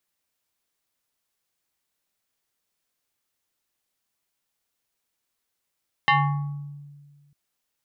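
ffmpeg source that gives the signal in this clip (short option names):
-f lavfi -i "aevalsrc='0.2*pow(10,-3*t/1.72)*sin(2*PI*144*t+2.8*pow(10,-3*t/0.93)*sin(2*PI*6.75*144*t))':d=1.25:s=44100"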